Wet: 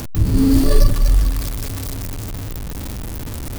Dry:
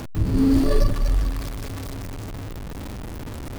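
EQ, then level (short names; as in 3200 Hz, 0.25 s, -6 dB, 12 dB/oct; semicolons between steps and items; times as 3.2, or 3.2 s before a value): low shelf 180 Hz +6 dB; high shelf 3600 Hz +9 dB; high shelf 9400 Hz +5 dB; +1.0 dB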